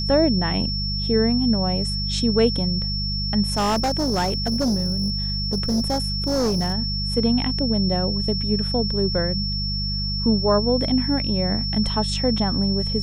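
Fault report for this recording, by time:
mains hum 50 Hz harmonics 4 −27 dBFS
whistle 5,400 Hz −26 dBFS
0:03.54–0:06.74: clipping −17.5 dBFS

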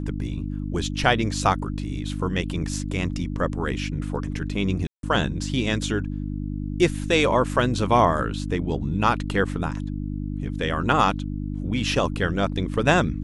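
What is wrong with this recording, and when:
mains hum 50 Hz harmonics 6 −29 dBFS
0:04.87–0:05.03: drop-out 162 ms

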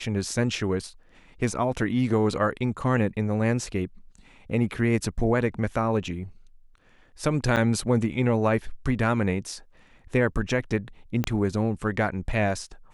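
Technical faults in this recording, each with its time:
0:07.56–0:07.57: drop-out 8.5 ms
0:11.24: click −12 dBFS

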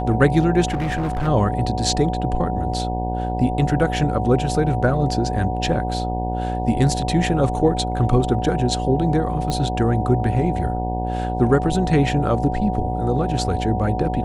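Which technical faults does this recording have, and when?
mains buzz 60 Hz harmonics 16 −25 dBFS
whistle 740 Hz −26 dBFS
0:00.67–0:01.28: clipping −19 dBFS
0:09.50: click −11 dBFS

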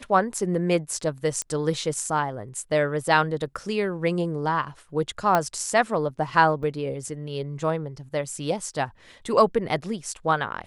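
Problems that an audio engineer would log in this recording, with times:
0:01.42: click −15 dBFS
0:05.35: click −8 dBFS
0:06.63: drop-out 4.3 ms

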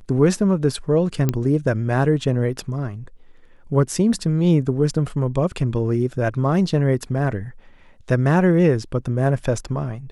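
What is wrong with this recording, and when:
0:01.29: click −7 dBFS

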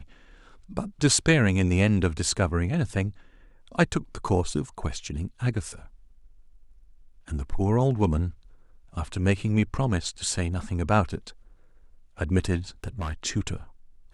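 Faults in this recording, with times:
0:12.84–0:13.13: clipping −27 dBFS

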